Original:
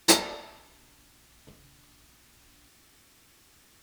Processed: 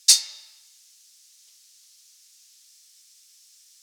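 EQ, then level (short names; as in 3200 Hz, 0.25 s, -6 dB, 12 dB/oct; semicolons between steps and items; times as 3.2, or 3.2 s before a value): band-pass 5600 Hz, Q 1.7; tilt +4.5 dB/oct; -1.0 dB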